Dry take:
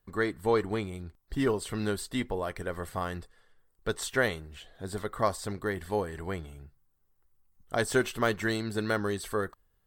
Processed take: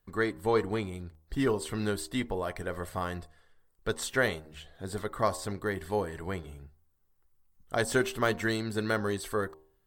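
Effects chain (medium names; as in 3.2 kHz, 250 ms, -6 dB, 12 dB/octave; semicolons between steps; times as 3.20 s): de-hum 78.04 Hz, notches 14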